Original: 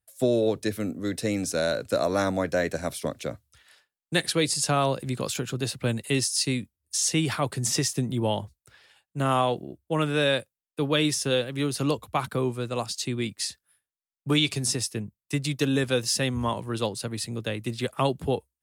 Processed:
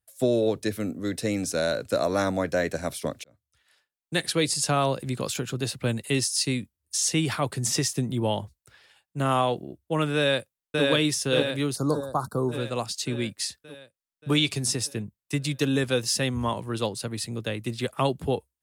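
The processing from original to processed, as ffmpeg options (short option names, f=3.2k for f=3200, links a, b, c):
-filter_complex "[0:a]asplit=2[a][b];[b]afade=t=in:st=10.16:d=0.01,afade=t=out:st=10.84:d=0.01,aecho=0:1:580|1160|1740|2320|2900|3480|4060|4640|5220:0.841395|0.504837|0.302902|0.181741|0.109045|0.0654269|0.0392561|0.0235537|0.0141322[c];[a][c]amix=inputs=2:normalize=0,asplit=3[d][e][f];[d]afade=t=out:st=11.75:d=0.02[g];[e]asuperstop=centerf=2500:order=8:qfactor=0.83,afade=t=in:st=11.75:d=0.02,afade=t=out:st=12.51:d=0.02[h];[f]afade=t=in:st=12.51:d=0.02[i];[g][h][i]amix=inputs=3:normalize=0,asplit=2[j][k];[j]atrim=end=3.24,asetpts=PTS-STARTPTS,afade=t=out:st=3.236:d=0.004:c=hsin[l];[k]atrim=start=3.24,asetpts=PTS-STARTPTS,afade=t=in:d=1.15[m];[l][m]concat=n=2:v=0:a=1"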